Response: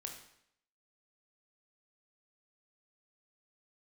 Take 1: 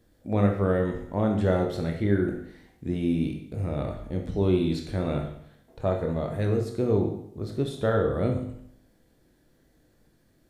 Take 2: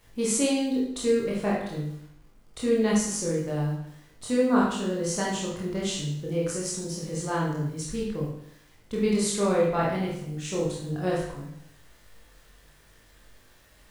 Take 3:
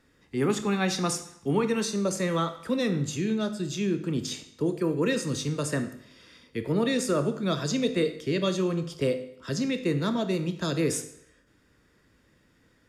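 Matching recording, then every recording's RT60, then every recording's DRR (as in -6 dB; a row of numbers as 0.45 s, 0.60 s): 1; 0.70 s, 0.70 s, 0.70 s; 2.0 dB, -5.5 dB, 8.0 dB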